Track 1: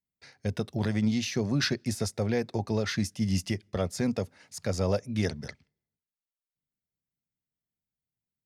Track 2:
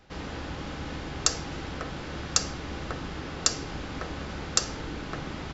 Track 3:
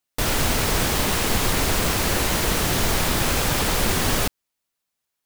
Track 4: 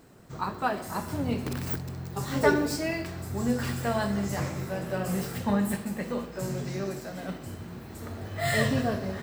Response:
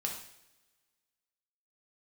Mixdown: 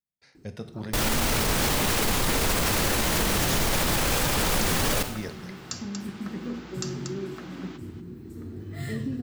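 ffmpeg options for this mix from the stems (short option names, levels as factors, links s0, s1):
-filter_complex "[0:a]volume=0.299,asplit=3[s0][s1][s2];[s1]volume=0.631[s3];[1:a]highpass=720,adelay=2250,volume=0.473,asplit=2[s4][s5];[s5]volume=0.282[s6];[2:a]adelay=750,volume=1,asplit=2[s7][s8];[s8]volume=0.422[s9];[3:a]lowshelf=f=460:t=q:w=3:g=10,acompressor=threshold=0.158:ratio=6,adelay=350,volume=0.266[s10];[s2]apad=whole_len=422308[s11];[s10][s11]sidechaincompress=threshold=0.00631:ratio=8:attack=16:release=1180[s12];[4:a]atrim=start_sample=2205[s13];[s3][s9]amix=inputs=2:normalize=0[s14];[s14][s13]afir=irnorm=-1:irlink=0[s15];[s6]aecho=0:1:236:1[s16];[s0][s4][s7][s12][s15][s16]amix=inputs=6:normalize=0,alimiter=limit=0.178:level=0:latency=1:release=27"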